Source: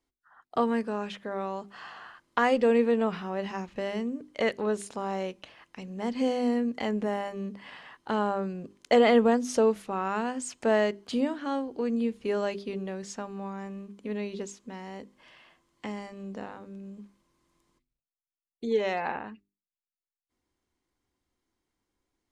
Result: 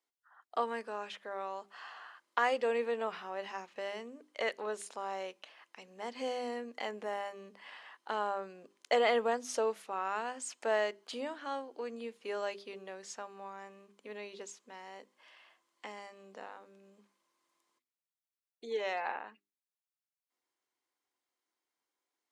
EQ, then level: high-pass 550 Hz 12 dB/octave; -4.0 dB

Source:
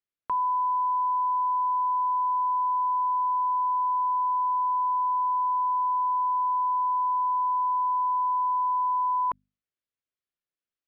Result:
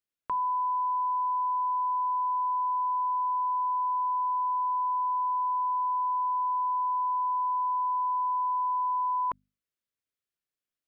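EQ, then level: peaking EQ 860 Hz -5.5 dB 0.44 oct; 0.0 dB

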